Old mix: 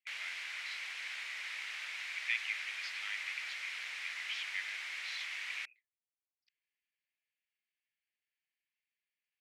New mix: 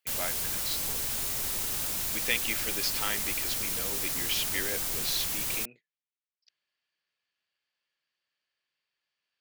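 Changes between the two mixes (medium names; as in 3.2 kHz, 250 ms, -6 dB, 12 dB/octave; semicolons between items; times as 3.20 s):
background: add pre-emphasis filter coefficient 0.8; master: remove ladder band-pass 2.4 kHz, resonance 60%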